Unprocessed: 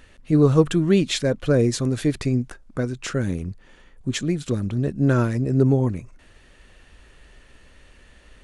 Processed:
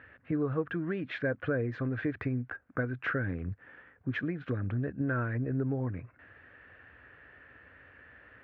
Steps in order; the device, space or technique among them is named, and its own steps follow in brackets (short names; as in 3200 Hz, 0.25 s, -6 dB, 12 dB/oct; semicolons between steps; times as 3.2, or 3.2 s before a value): bass amplifier (compressor 5:1, threshold -24 dBFS, peak gain reduction 12.5 dB; speaker cabinet 89–2100 Hz, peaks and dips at 150 Hz -8 dB, 210 Hz -10 dB, 370 Hz -7 dB, 590 Hz -3 dB, 930 Hz -5 dB, 1600 Hz +8 dB)